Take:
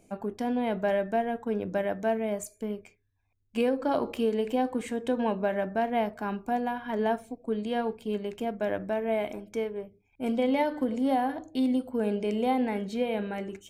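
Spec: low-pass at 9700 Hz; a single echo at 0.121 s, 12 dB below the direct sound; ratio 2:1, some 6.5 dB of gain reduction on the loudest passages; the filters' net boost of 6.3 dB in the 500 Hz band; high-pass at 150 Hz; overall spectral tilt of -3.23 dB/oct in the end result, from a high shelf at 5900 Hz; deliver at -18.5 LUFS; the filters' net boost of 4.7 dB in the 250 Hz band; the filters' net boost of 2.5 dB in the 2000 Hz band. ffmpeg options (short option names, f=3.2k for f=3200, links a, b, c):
-af "highpass=150,lowpass=9.7k,equalizer=f=250:t=o:g=4.5,equalizer=f=500:t=o:g=6.5,equalizer=f=2k:t=o:g=3.5,highshelf=f=5.9k:g=-7.5,acompressor=threshold=-28dB:ratio=2,aecho=1:1:121:0.251,volume=11dB"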